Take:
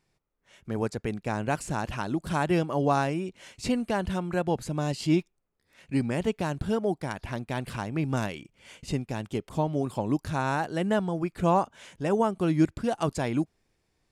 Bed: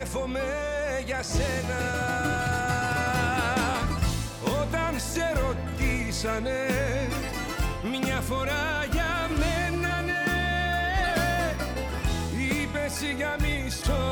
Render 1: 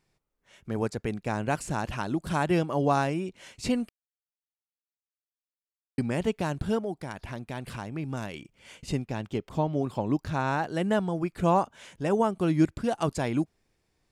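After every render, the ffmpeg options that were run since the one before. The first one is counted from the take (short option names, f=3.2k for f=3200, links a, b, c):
-filter_complex "[0:a]asettb=1/sr,asplit=3[a][b][c];[a]atrim=end=6.814[d];[b]atrim=start=6.81:end=8.34,asetpts=PTS-STARTPTS,afade=t=in:d=0.004:c=qsin,afade=t=out:st=1.526:d=0.004:c=qsin,acompressor=threshold=-38dB:ratio=1.5:attack=3.2:release=140:knee=1:detection=peak[e];[c]atrim=start=8.336[f];[d][e]acrossfade=d=0.004:c1=hsin:c2=qsin[g];[g][f]acrossfade=d=0.004:c1=qsin:c2=hsin,asettb=1/sr,asplit=3[h][i][j];[h]atrim=end=9.044[k];[i]atrim=start=9.04:end=10.67,asetpts=PTS-STARTPTS,afade=t=in:d=0.004:c=qsin,afade=t=out:st=1.626:d=0.004:c=qsin,equalizer=f=10k:t=o:w=0.97:g=-9.5[l];[j]atrim=start=10.666[m];[k][l]acrossfade=d=0.004:c1=hsin:c2=qsin[n];[n][m]acrossfade=d=0.004:c1=qsin:c2=hsin,asplit=3[o][p][q];[o]atrim=end=3.89,asetpts=PTS-STARTPTS,afade=t=out:st=3.886:d=0.004:c=hsin[r];[p]atrim=start=3.89:end=5.98,asetpts=PTS-STARTPTS,volume=0[s];[q]atrim=start=5.98,asetpts=PTS-STARTPTS,afade=t=in:d=0.004:c=hsin[t];[r][s][t]concat=n=3:v=0:a=1"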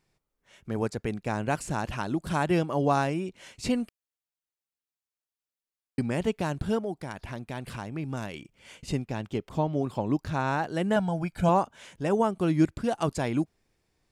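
-filter_complex "[0:a]asettb=1/sr,asplit=3[a][b][c];[a]atrim=end=10.964[d];[b]atrim=start=10.96:end=11.49,asetpts=PTS-STARTPTS,afade=t=in:d=0.004:c=qsin,afade=t=out:st=0.526:d=0.004:c=qsin,aecho=1:1:1.3:0.65,atrim=end_sample=23373[e];[c]atrim=start=11.486[f];[d][e]acrossfade=d=0.004:c1=hsin:c2=qsin[g];[g][f]acrossfade=d=0.004:c1=qsin:c2=hsin"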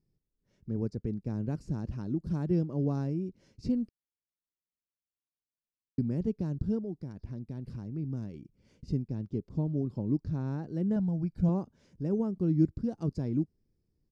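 -af "firequalizer=gain_entry='entry(190,0);entry(430,-7);entry(710,-20);entry(3200,-27);entry(5000,-12);entry(7900,-28)':delay=0.05:min_phase=1"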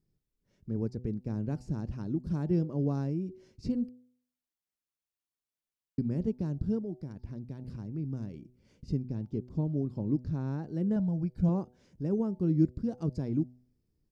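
-af "bandreject=f=124.5:t=h:w=4,bandreject=f=249:t=h:w=4,bandreject=f=373.5:t=h:w=4,bandreject=f=498:t=h:w=4,bandreject=f=622.5:t=h:w=4,bandreject=f=747:t=h:w=4,bandreject=f=871.5:t=h:w=4"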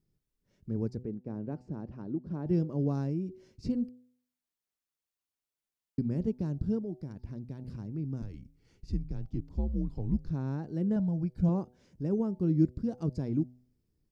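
-filter_complex "[0:a]asettb=1/sr,asplit=3[a][b][c];[a]atrim=end=1.034[d];[b]atrim=start=1.03:end=2.46,asetpts=PTS-STARTPTS,afade=t=in:d=0.004:c=qsin,afade=t=out:st=1.426:d=0.004:c=qsin,bandpass=f=530:t=q:w=0.52[e];[c]atrim=start=2.456[f];[d][e]acrossfade=d=0.004:c1=hsin:c2=qsin[g];[g][f]acrossfade=d=0.004:c1=qsin:c2=hsin,asettb=1/sr,asplit=3[h][i][j];[h]atrim=end=8.224[k];[i]atrim=start=8.22:end=10.3,asetpts=PTS-STARTPTS,afade=t=in:d=0.004:c=qsin,afade=t=out:st=2.076:d=0.004:c=qsin,afreqshift=-94[l];[j]atrim=start=10.296[m];[k][l]acrossfade=d=0.004:c1=hsin:c2=qsin[n];[n][m]acrossfade=d=0.004:c1=qsin:c2=hsin"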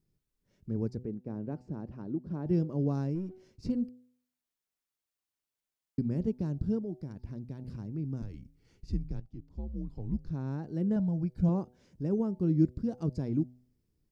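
-filter_complex "[0:a]asettb=1/sr,asplit=3[a][b][c];[a]atrim=end=3.154[d];[b]atrim=start=3.15:end=3.7,asetpts=PTS-STARTPTS,afade=t=in:d=0.004:c=qsin,afade=t=out:st=0.546:d=0.004:c=qsin,aeval=exprs='if(lt(val(0),0),0.708*val(0),val(0))':c=same[e];[c]atrim=start=3.696[f];[d][e]acrossfade=d=0.004:c1=hsin:c2=qsin[g];[g][f]acrossfade=d=0.004:c1=qsin:c2=hsin,asplit=2[h][i];[h]atrim=end=9.2,asetpts=PTS-STARTPTS,afade=t=out:st=9.196:d=0.004:c=hsin:silence=0.223872[j];[i]atrim=start=9.2,asetpts=PTS-STARTPTS,afade=t=in:d=1.62:silence=0.223872[k];[j][k]concat=n=2:v=0:a=1"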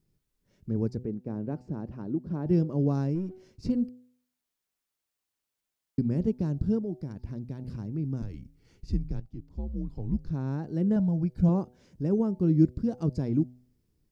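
-af "volume=4dB"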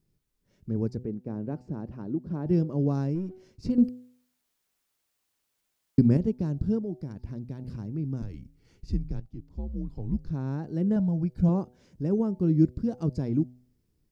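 -filter_complex "[0:a]asplit=3[a][b][c];[a]atrim=end=3.782[d];[b]atrim=start=3.778:end=6.172,asetpts=PTS-STARTPTS,volume=7.5dB[e];[c]atrim=start=6.168[f];[d][e]acrossfade=d=0.004:c1=hsin:c2=hsin[g];[g][f]acrossfade=d=0.004:c1=hsin:c2=hsin"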